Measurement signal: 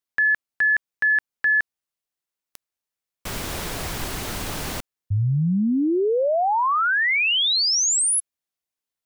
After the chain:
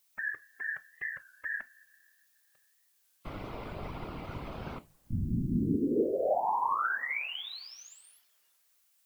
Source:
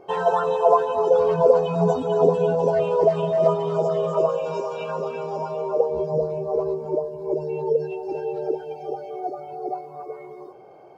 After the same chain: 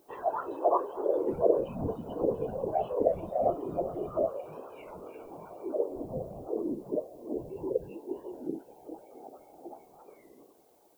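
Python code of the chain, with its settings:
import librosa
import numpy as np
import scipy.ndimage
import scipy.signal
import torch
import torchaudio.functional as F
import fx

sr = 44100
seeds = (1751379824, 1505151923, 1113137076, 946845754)

y = scipy.signal.sosfilt(scipy.signal.butter(2, 1800.0, 'lowpass', fs=sr, output='sos'), x)
y = fx.rev_double_slope(y, sr, seeds[0], early_s=0.25, late_s=3.3, knee_db=-20, drr_db=11.0)
y = fx.whisperise(y, sr, seeds[1])
y = fx.dmg_noise_colour(y, sr, seeds[2], colour='blue', level_db=-52.0)
y = fx.noise_reduce_blind(y, sr, reduce_db=9)
y = fx.record_warp(y, sr, rpm=33.33, depth_cents=160.0)
y = y * 10.0 ** (-9.0 / 20.0)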